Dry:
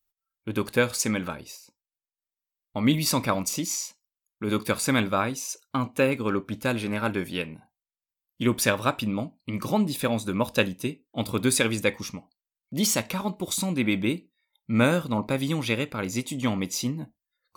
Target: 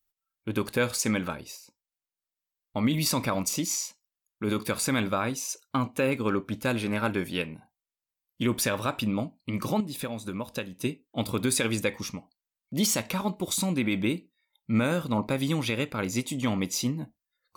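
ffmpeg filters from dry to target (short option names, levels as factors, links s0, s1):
-filter_complex "[0:a]asettb=1/sr,asplit=3[s0][s1][s2];[s0]atrim=end=9.804[s3];[s1]atrim=start=9.8:end=10.81,asetpts=PTS-STARTPTS,afade=t=in:d=0.004:c=qsin,afade=t=out:st=1.006:d=0.004:c=qsin,acompressor=threshold=0.0282:ratio=5[s4];[s2]atrim=start=10.806[s5];[s3][s4]acrossfade=d=0.004:c1=hsin:c2=qsin[s6];[s6][s5]acrossfade=d=0.004:c1=qsin:c2=hsin,alimiter=limit=0.178:level=0:latency=1:release=73"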